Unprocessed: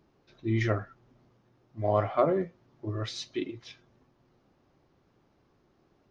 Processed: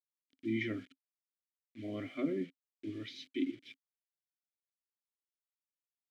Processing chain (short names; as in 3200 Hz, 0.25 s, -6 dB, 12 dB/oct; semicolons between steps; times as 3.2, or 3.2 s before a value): bit-crush 8-bit; vowel filter i; gain +6.5 dB